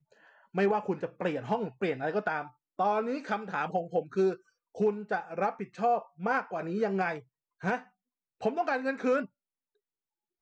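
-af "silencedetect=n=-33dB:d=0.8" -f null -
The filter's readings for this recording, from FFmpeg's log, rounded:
silence_start: 9.24
silence_end: 10.42 | silence_duration: 1.17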